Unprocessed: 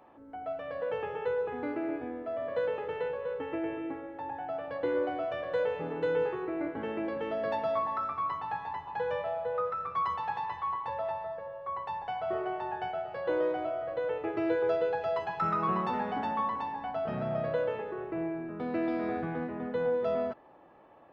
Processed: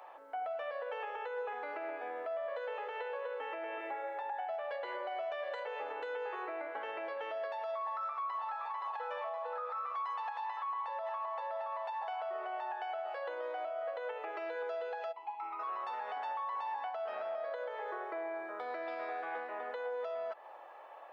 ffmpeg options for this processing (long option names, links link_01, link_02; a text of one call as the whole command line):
ffmpeg -i in.wav -filter_complex "[0:a]asettb=1/sr,asplit=3[link_01][link_02][link_03];[link_01]atrim=end=3.804[link_04];[link_02]atrim=start=3.8:end=5.67,asetpts=PTS-STARTPTS,afade=type=in:duration=0.004:curve=qsin,afade=type=out:start_time=1.866:duration=0.004:curve=qsin,aecho=1:1:5:0.77,atrim=end_sample=82467[link_05];[link_03]atrim=start=5.666[link_06];[link_04][link_05]acrossfade=duration=0.004:curve1=hsin:curve2=qsin[link_07];[link_07][link_06]acrossfade=duration=0.004:curve1=qsin:curve2=hsin,asplit=2[link_08][link_09];[link_09]afade=type=in:start_time=7.82:duration=0.01,afade=type=out:start_time=8.74:duration=0.01,aecho=0:1:520|1040|1560|2080|2600|3120|3640|4160|4680|5200:0.595662|0.38718|0.251667|0.163584|0.106329|0.0691141|0.0449242|0.0292007|0.0189805|0.0123373[link_10];[link_08][link_10]amix=inputs=2:normalize=0,asplit=2[link_11][link_12];[link_12]afade=type=in:start_time=10.54:duration=0.01,afade=type=out:start_time=11.37:duration=0.01,aecho=0:1:520|1040|1560|2080:1|0.25|0.0625|0.015625[link_13];[link_11][link_13]amix=inputs=2:normalize=0,asplit=3[link_14][link_15][link_16];[link_14]afade=type=out:start_time=15.11:duration=0.02[link_17];[link_15]asplit=3[link_18][link_19][link_20];[link_18]bandpass=frequency=300:width_type=q:width=8,volume=0dB[link_21];[link_19]bandpass=frequency=870:width_type=q:width=8,volume=-6dB[link_22];[link_20]bandpass=frequency=2240:width_type=q:width=8,volume=-9dB[link_23];[link_21][link_22][link_23]amix=inputs=3:normalize=0,afade=type=in:start_time=15.11:duration=0.02,afade=type=out:start_time=15.59:duration=0.02[link_24];[link_16]afade=type=in:start_time=15.59:duration=0.02[link_25];[link_17][link_24][link_25]amix=inputs=3:normalize=0,asettb=1/sr,asplit=3[link_26][link_27][link_28];[link_26]atrim=end=17.374[link_29];[link_27]atrim=start=17.37:end=18.87,asetpts=PTS-STARTPTS,afade=type=in:duration=0.004:curve=qsin,afade=type=out:start_time=1.496:duration=0.004:curve=qsin,bandreject=frequency=2700:width=5.6[link_30];[link_28]atrim=start=18.866[link_31];[link_29][link_30]acrossfade=duration=0.004:curve1=hsin:curve2=qsin[link_32];[link_32][link_31]acrossfade=duration=0.004:curve1=qsin:curve2=hsin,acompressor=threshold=-34dB:ratio=6,highpass=frequency=580:width=0.5412,highpass=frequency=580:width=1.3066,alimiter=level_in=15dB:limit=-24dB:level=0:latency=1:release=213,volume=-15dB,volume=7.5dB" out.wav